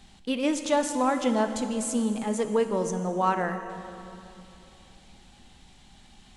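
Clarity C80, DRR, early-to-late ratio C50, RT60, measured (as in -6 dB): 9.0 dB, 7.0 dB, 8.0 dB, 2.9 s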